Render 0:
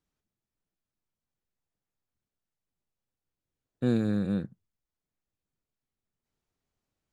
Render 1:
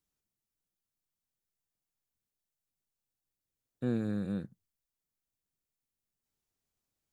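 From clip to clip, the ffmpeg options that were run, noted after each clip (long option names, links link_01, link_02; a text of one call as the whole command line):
ffmpeg -i in.wav -filter_complex "[0:a]highshelf=frequency=4800:gain=11.5,acrossover=split=2500[link_01][link_02];[link_02]alimiter=level_in=26dB:limit=-24dB:level=0:latency=1,volume=-26dB[link_03];[link_01][link_03]amix=inputs=2:normalize=0,volume=-6dB" out.wav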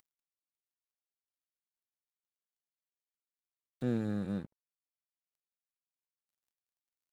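ffmpeg -i in.wav -af "acompressor=mode=upward:threshold=-37dB:ratio=2.5,aeval=exprs='sgn(val(0))*max(abs(val(0))-0.00316,0)':channel_layout=same" out.wav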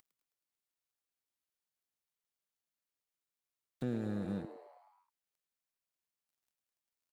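ffmpeg -i in.wav -filter_complex "[0:a]acompressor=threshold=-38dB:ratio=2,asplit=7[link_01][link_02][link_03][link_04][link_05][link_06][link_07];[link_02]adelay=106,afreqshift=130,volume=-13dB[link_08];[link_03]adelay=212,afreqshift=260,volume=-17.7dB[link_09];[link_04]adelay=318,afreqshift=390,volume=-22.5dB[link_10];[link_05]adelay=424,afreqshift=520,volume=-27.2dB[link_11];[link_06]adelay=530,afreqshift=650,volume=-31.9dB[link_12];[link_07]adelay=636,afreqshift=780,volume=-36.7dB[link_13];[link_01][link_08][link_09][link_10][link_11][link_12][link_13]amix=inputs=7:normalize=0,volume=1.5dB" out.wav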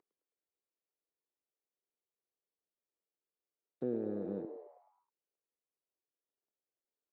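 ffmpeg -i in.wav -af "bandpass=frequency=420:width_type=q:width=2.3:csg=0,volume=7dB" out.wav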